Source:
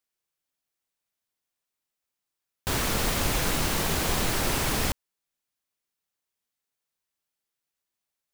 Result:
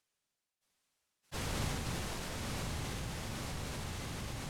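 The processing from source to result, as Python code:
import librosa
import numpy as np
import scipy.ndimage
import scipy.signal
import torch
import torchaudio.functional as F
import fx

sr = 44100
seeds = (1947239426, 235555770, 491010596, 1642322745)

y = fx.octave_divider(x, sr, octaves=1, level_db=-1.0)
y = fx.doppler_pass(y, sr, speed_mps=24, closest_m=2.1, pass_at_s=3.04)
y = scipy.signal.sosfilt(scipy.signal.butter(2, 10000.0, 'lowpass', fs=sr, output='sos'), y)
y = fx.low_shelf(y, sr, hz=63.0, db=-2.5)
y = fx.hum_notches(y, sr, base_hz=50, count=9)
y = fx.tremolo_shape(y, sr, shape='saw_down', hz=0.87, depth_pct=85)
y = fx.rev_schroeder(y, sr, rt60_s=1.4, comb_ms=30, drr_db=8.0)
y = fx.stretch_vocoder_free(y, sr, factor=0.54)
y = fx.dynamic_eq(y, sr, hz=110.0, q=0.78, threshold_db=-55.0, ratio=4.0, max_db=7)
y = fx.echo_diffused(y, sr, ms=1041, feedback_pct=59, wet_db=-8.0)
y = fx.env_flatten(y, sr, amount_pct=70)
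y = y * librosa.db_to_amplitude(-1.5)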